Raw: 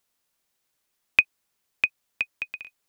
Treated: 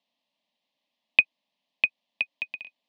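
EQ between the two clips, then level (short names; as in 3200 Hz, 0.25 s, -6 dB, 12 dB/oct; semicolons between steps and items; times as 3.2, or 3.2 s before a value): speaker cabinet 260–3500 Hz, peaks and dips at 480 Hz -6 dB, 780 Hz -6 dB, 1500 Hz -10 dB, 2300 Hz -5 dB; bell 460 Hz -5 dB 0.23 oct; fixed phaser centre 370 Hz, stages 6; +8.0 dB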